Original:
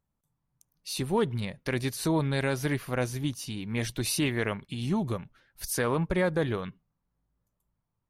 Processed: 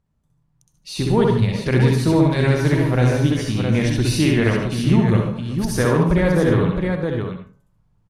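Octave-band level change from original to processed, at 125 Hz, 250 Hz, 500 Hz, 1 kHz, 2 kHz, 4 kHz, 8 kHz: +15.0, +13.0, +10.5, +9.0, +8.5, +7.0, +3.5 dB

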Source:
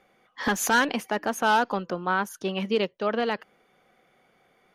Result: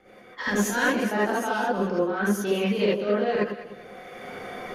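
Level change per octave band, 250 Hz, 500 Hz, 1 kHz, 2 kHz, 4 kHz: +4.5, +4.0, -3.0, -0.5, -2.5 dB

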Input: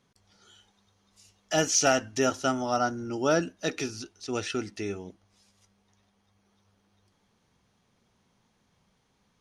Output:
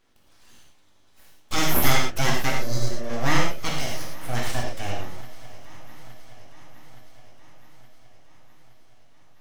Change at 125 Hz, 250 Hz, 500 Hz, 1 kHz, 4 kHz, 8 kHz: +9.5, 0.0, -3.5, +2.0, +5.0, -2.0 dB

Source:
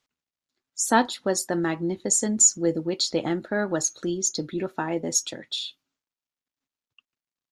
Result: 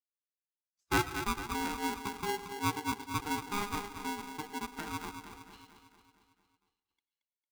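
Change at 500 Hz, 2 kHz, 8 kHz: -15.0, -4.5, -22.5 dB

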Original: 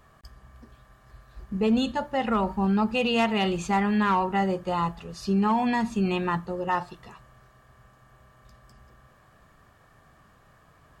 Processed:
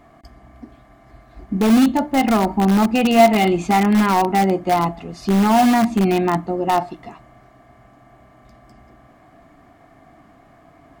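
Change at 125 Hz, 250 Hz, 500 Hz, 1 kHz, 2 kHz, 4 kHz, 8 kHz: +7.5, +9.5, +9.0, +8.5, +6.0, +5.5, +13.0 dB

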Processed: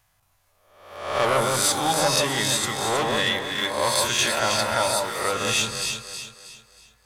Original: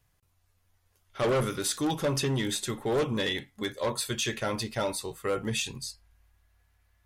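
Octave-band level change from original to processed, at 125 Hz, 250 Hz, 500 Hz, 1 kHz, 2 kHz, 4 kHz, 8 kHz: 0.0, 0.0, +5.0, +12.0, +10.5, +10.5, +11.0 dB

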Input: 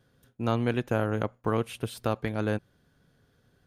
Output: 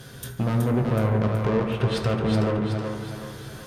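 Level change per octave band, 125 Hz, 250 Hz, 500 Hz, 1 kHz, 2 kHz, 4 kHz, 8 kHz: +9.0, +6.5, +4.5, +3.0, +2.0, +6.5, +6.0 dB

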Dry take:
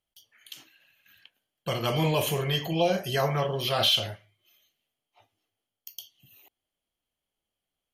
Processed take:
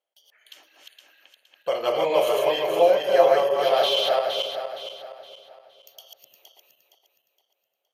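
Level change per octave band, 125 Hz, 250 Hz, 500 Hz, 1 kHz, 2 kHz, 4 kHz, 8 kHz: under -15 dB, -5.0 dB, +10.0 dB, +7.5 dB, +2.5 dB, +0.5 dB, n/a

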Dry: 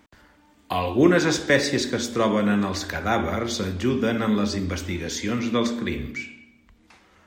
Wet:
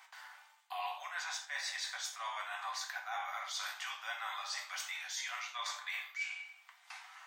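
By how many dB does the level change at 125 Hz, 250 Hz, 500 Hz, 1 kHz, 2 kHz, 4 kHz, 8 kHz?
under -40 dB, under -40 dB, -31.5 dB, -11.5 dB, -11.0 dB, -10.0 dB, -10.0 dB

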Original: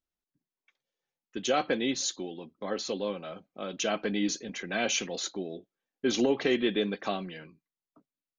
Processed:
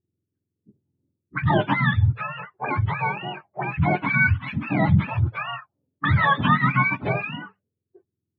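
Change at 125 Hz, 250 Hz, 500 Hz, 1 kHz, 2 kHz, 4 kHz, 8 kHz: +24.0 dB, +5.0 dB, -1.5 dB, +13.5 dB, +13.5 dB, -2.5 dB, under -40 dB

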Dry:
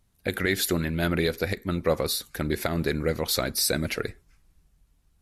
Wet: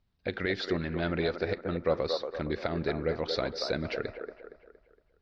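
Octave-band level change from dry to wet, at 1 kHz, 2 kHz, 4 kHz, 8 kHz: -3.0 dB, -6.0 dB, -7.5 dB, under -20 dB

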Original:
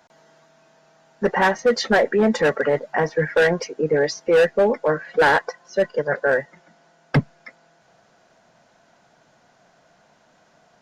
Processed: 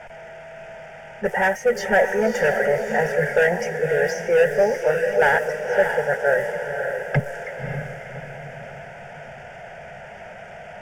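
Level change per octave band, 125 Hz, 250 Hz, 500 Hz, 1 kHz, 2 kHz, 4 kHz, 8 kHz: -1.5 dB, -6.0 dB, 0.0 dB, -1.0 dB, +1.5 dB, -6.5 dB, n/a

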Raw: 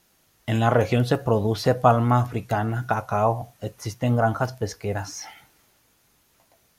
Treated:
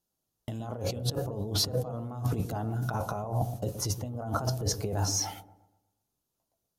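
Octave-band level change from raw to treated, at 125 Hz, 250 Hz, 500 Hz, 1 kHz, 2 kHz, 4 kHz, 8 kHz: -7.0, -10.5, -12.0, -13.5, -14.5, +2.5, +6.0 dB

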